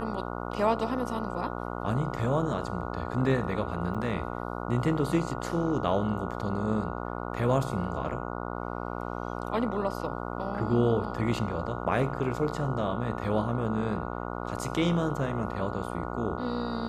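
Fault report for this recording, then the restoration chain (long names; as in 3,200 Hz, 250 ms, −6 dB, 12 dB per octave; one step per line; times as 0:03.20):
mains buzz 60 Hz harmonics 24 −35 dBFS
0:03.94–0:03.95: drop-out 6.7 ms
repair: hum removal 60 Hz, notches 24
repair the gap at 0:03.94, 6.7 ms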